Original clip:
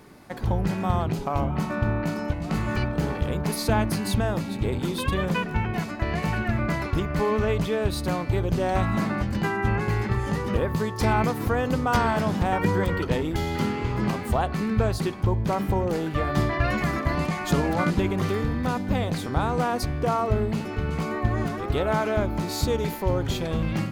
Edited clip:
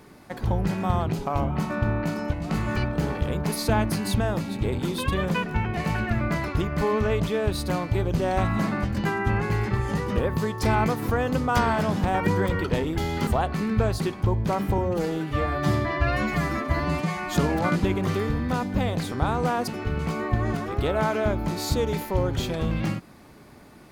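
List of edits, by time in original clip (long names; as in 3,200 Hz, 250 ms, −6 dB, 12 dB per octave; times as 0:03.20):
0:05.77–0:06.15: remove
0:13.65–0:14.27: remove
0:15.78–0:17.49: time-stretch 1.5×
0:19.82–0:20.59: remove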